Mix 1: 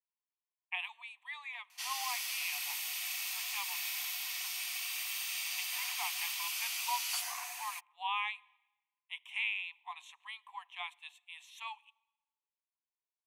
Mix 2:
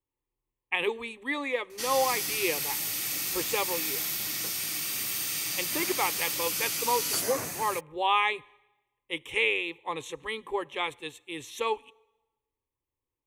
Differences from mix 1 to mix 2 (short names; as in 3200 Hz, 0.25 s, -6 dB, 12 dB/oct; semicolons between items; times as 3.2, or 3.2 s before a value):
speech +7.0 dB; master: remove rippled Chebyshev high-pass 700 Hz, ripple 9 dB